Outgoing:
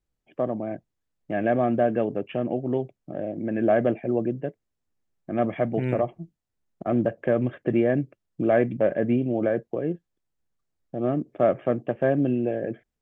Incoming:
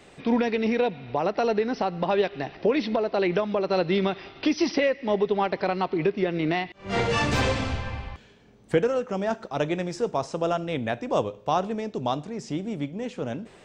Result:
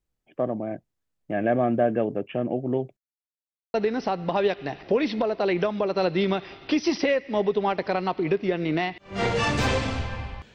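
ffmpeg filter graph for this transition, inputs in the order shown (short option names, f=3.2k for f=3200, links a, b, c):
-filter_complex "[0:a]apad=whole_dur=10.54,atrim=end=10.54,asplit=2[a][b];[a]atrim=end=2.97,asetpts=PTS-STARTPTS,afade=t=out:st=2.966:d=0.004:c=hsin[c];[b]atrim=start=2.97:end=3.74,asetpts=PTS-STARTPTS,volume=0[d];[1:a]atrim=start=1.48:end=8.28,asetpts=PTS-STARTPTS,afade=t=in:d=0.004:c=hsin[e];[c][d][e]concat=n=3:v=0:a=1"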